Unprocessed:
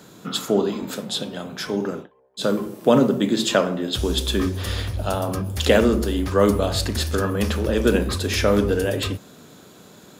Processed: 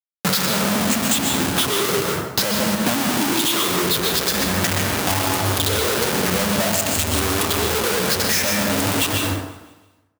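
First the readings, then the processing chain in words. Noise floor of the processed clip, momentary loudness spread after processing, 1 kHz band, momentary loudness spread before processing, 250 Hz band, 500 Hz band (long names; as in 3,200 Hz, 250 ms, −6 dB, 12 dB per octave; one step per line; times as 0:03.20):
−58 dBFS, 2 LU, +6.0 dB, 11 LU, −0.5 dB, −3.0 dB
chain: rippled gain that drifts along the octave scale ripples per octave 0.61, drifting +0.52 Hz, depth 20 dB
comparator with hysteresis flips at −28 dBFS
spectral tilt +2.5 dB per octave
dense smooth reverb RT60 0.92 s, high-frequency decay 0.55×, pre-delay 110 ms, DRR 3 dB
downward compressor, threshold −18 dBFS, peak gain reduction 9 dB
high-pass filter 91 Hz 24 dB per octave
low-shelf EQ 210 Hz +7 dB
on a send: repeating echo 168 ms, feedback 47%, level −20 dB
on the sum: level +2 dB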